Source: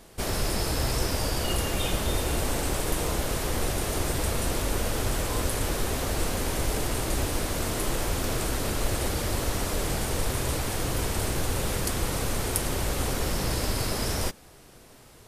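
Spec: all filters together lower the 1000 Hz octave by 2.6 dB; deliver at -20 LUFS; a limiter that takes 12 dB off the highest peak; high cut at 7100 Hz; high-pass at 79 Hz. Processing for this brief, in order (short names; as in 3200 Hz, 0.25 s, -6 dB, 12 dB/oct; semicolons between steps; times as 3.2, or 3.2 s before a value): HPF 79 Hz; LPF 7100 Hz; bell 1000 Hz -3.5 dB; gain +14 dB; limiter -11 dBFS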